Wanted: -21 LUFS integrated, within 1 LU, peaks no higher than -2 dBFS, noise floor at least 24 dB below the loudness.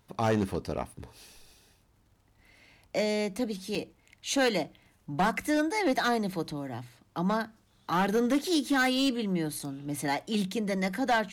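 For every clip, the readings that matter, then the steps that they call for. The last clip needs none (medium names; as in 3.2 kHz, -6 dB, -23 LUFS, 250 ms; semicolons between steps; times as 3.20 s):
clipped samples 1.1%; clipping level -20.5 dBFS; dropouts 2; longest dropout 4.7 ms; loudness -29.5 LUFS; peak level -20.5 dBFS; loudness target -21.0 LUFS
-> clip repair -20.5 dBFS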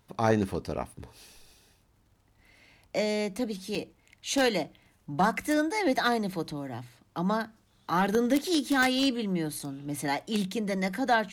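clipped samples 0.0%; dropouts 2; longest dropout 4.7 ms
-> interpolate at 3.75/9.59 s, 4.7 ms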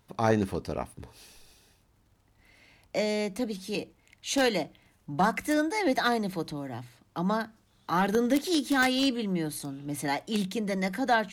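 dropouts 0; loudness -29.0 LUFS; peak level -11.5 dBFS; loudness target -21.0 LUFS
-> trim +8 dB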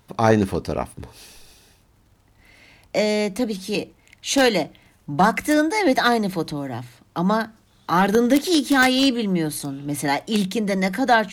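loudness -21.0 LUFS; peak level -3.5 dBFS; noise floor -58 dBFS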